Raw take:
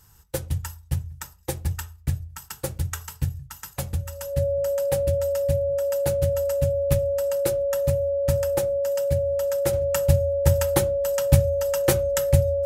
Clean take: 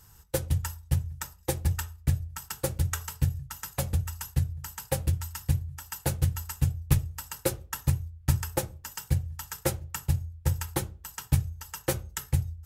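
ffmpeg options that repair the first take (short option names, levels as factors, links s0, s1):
-af "bandreject=f=560:w=30,asetnsamples=n=441:p=0,asendcmd='9.73 volume volume -7dB',volume=1"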